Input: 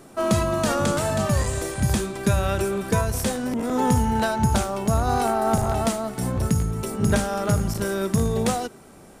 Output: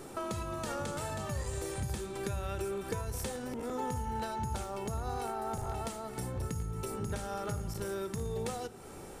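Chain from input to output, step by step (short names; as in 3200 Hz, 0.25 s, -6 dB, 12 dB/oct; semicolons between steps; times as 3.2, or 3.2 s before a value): compressor 4:1, threshold -37 dBFS, peak gain reduction 18 dB; reverb RT60 1.2 s, pre-delay 8 ms, DRR 17.5 dB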